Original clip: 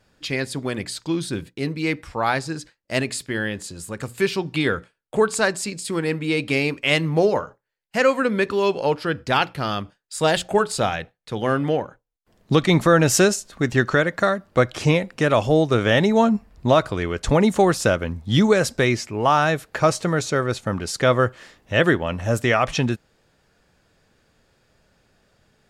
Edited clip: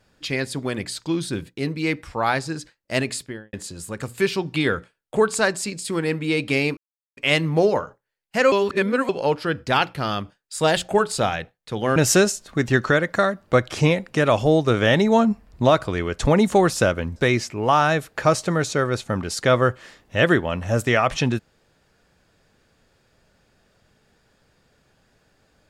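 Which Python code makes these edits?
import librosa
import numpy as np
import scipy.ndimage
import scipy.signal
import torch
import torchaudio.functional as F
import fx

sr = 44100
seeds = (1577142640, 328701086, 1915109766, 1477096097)

y = fx.studio_fade_out(x, sr, start_s=3.13, length_s=0.4)
y = fx.edit(y, sr, fx.insert_silence(at_s=6.77, length_s=0.4),
    fx.reverse_span(start_s=8.12, length_s=0.57),
    fx.cut(start_s=11.56, length_s=1.44),
    fx.cut(start_s=18.2, length_s=0.53), tone=tone)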